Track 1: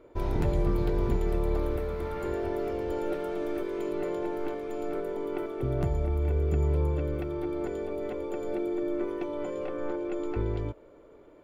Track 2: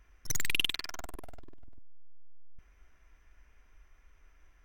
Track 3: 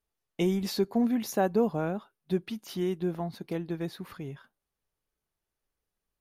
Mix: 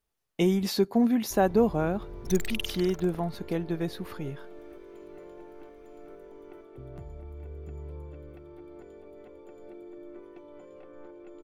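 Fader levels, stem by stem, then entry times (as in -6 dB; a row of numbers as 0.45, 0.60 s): -15.0, -5.0, +3.0 dB; 1.15, 2.00, 0.00 s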